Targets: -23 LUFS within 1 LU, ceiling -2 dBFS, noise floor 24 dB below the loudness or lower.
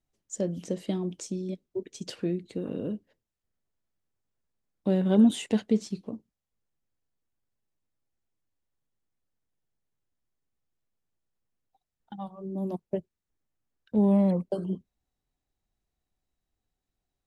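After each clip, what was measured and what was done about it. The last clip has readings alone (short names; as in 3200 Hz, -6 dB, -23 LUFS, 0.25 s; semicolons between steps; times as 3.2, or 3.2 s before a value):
loudness -28.5 LUFS; peak -11.5 dBFS; loudness target -23.0 LUFS
-> gain +5.5 dB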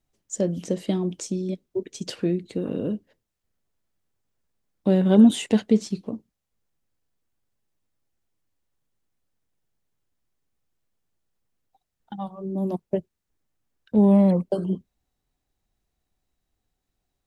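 loudness -23.5 LUFS; peak -6.0 dBFS; noise floor -81 dBFS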